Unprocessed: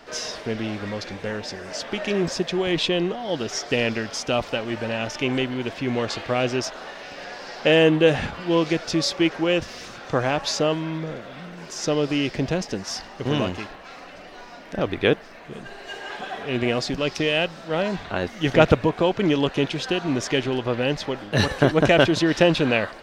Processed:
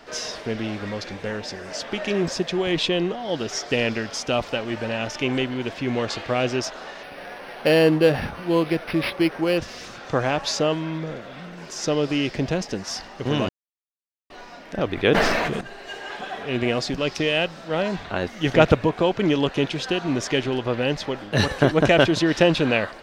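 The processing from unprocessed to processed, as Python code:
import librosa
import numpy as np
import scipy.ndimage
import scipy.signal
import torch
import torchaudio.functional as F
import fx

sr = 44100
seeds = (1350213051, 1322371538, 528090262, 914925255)

y = fx.resample_linear(x, sr, factor=6, at=(7.03, 9.58))
y = fx.sustainer(y, sr, db_per_s=24.0, at=(14.95, 15.61))
y = fx.edit(y, sr, fx.silence(start_s=13.49, length_s=0.81), tone=tone)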